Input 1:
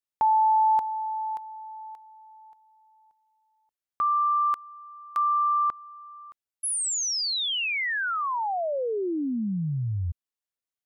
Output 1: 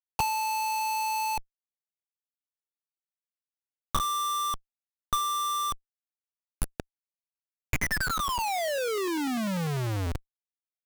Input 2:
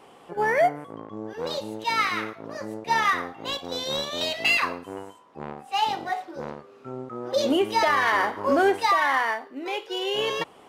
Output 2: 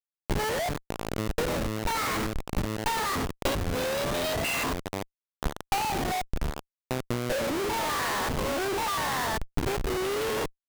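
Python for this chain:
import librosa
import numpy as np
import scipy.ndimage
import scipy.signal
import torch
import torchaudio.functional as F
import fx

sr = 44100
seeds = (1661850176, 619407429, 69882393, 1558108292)

y = fx.spec_steps(x, sr, hold_ms=100)
y = fx.schmitt(y, sr, flips_db=-31.5)
y = fx.transient(y, sr, attack_db=6, sustain_db=1)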